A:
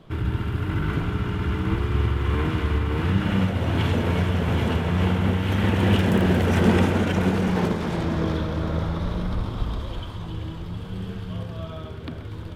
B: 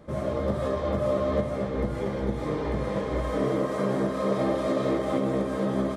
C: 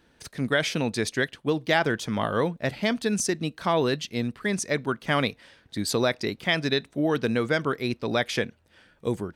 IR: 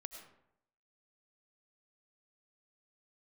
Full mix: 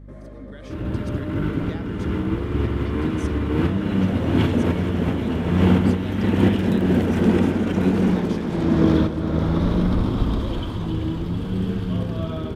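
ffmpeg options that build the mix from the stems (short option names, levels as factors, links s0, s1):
-filter_complex "[0:a]adelay=600,volume=0.668[s0];[1:a]equalizer=f=1800:t=o:w=0.64:g=8.5,volume=0.211[s1];[2:a]volume=0.126,asplit=2[s2][s3];[s3]apad=whole_len=580281[s4];[s0][s4]sidechaincompress=threshold=0.00562:ratio=8:attack=11:release=680[s5];[s1][s2]amix=inputs=2:normalize=0,acompressor=threshold=0.00631:ratio=6,volume=1[s6];[s5][s6]amix=inputs=2:normalize=0,equalizer=f=270:w=1.1:g=10.5,dynaudnorm=f=470:g=3:m=2.24,aeval=exprs='val(0)+0.01*(sin(2*PI*50*n/s)+sin(2*PI*2*50*n/s)/2+sin(2*PI*3*50*n/s)/3+sin(2*PI*4*50*n/s)/4+sin(2*PI*5*50*n/s)/5)':c=same"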